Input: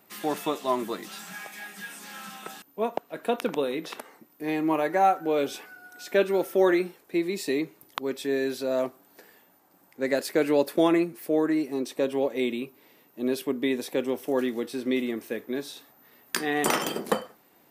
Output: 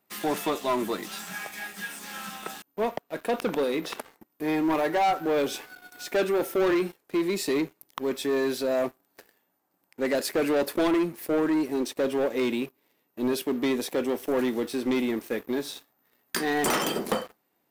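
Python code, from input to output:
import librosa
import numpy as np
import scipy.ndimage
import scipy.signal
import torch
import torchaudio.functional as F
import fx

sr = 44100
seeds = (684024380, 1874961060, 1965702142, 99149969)

y = fx.leveller(x, sr, passes=3)
y = y * 10.0 ** (-7.5 / 20.0)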